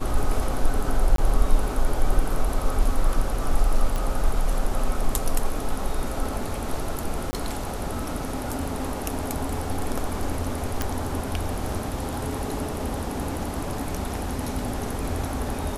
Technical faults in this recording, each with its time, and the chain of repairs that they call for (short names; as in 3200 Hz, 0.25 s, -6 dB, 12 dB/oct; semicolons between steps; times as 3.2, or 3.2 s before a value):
1.16–1.18 gap 23 ms
3.96 pop
7.31–7.33 gap 20 ms
10.82 pop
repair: de-click; interpolate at 1.16, 23 ms; interpolate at 7.31, 20 ms